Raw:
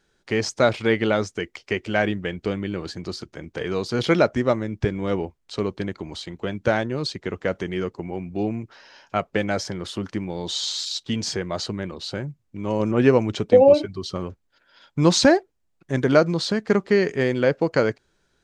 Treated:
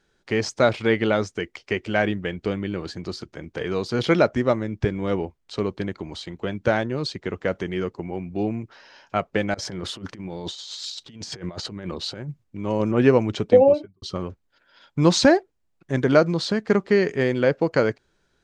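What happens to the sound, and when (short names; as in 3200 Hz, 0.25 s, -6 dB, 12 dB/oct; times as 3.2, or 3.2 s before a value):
9.54–12.44 negative-ratio compressor -32 dBFS, ratio -0.5
13.52–14.02 studio fade out
whole clip: high shelf 7400 Hz -6 dB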